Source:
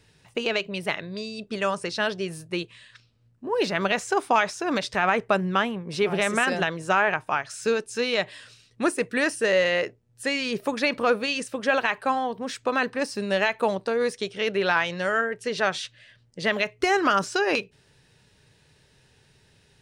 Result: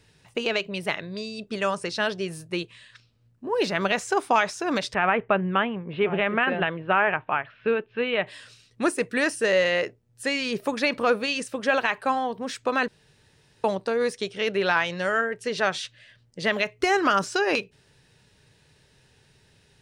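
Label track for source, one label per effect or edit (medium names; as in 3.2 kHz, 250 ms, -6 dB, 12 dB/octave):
4.940000	8.270000	steep low-pass 3.2 kHz 48 dB/octave
12.880000	13.640000	room tone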